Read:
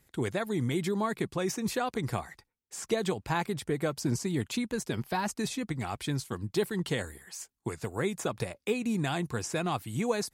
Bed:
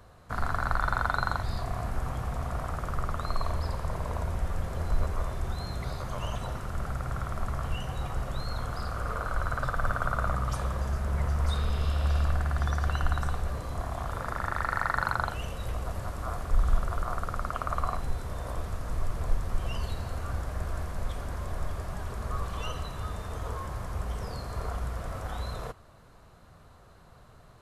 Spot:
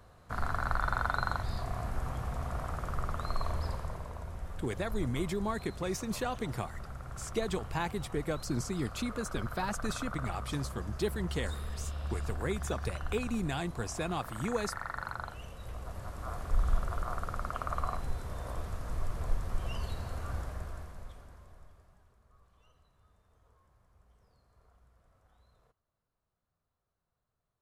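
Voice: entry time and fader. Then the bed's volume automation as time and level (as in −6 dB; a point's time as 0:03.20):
4.45 s, −4.0 dB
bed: 0:03.71 −3.5 dB
0:04.13 −10.5 dB
0:15.54 −10.5 dB
0:16.50 −4 dB
0:20.41 −4 dB
0:22.23 −32 dB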